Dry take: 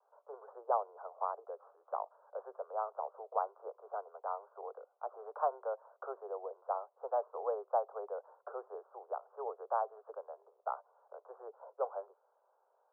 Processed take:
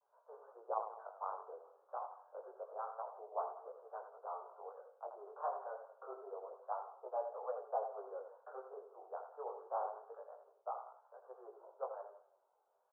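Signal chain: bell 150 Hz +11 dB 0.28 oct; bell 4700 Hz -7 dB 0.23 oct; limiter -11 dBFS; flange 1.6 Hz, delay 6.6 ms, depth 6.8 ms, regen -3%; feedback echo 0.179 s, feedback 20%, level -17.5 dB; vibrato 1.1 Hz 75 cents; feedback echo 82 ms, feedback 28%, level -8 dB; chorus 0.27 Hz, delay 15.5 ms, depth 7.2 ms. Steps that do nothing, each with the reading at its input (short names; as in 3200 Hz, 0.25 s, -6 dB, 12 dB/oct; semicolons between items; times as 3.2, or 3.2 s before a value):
bell 150 Hz: input band starts at 340 Hz; bell 4700 Hz: input band ends at 1500 Hz; limiter -11 dBFS: input peak -19.0 dBFS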